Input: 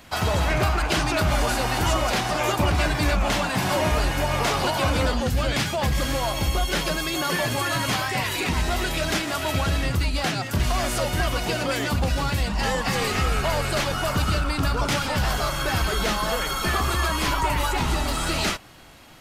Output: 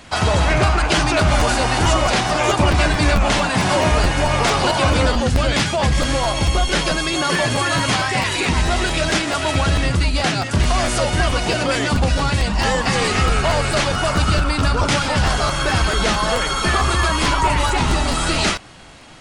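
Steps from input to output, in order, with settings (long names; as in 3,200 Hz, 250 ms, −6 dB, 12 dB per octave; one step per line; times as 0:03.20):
downsampling to 22,050 Hz
regular buffer underruns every 0.22 s, samples 512, repeat, from 0:00.95
level +6 dB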